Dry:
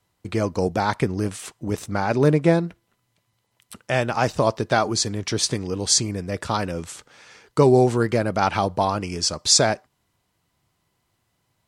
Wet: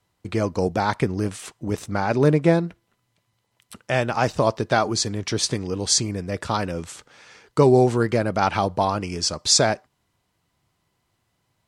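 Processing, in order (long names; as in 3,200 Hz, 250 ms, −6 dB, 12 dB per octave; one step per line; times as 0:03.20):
high-shelf EQ 10,000 Hz −5 dB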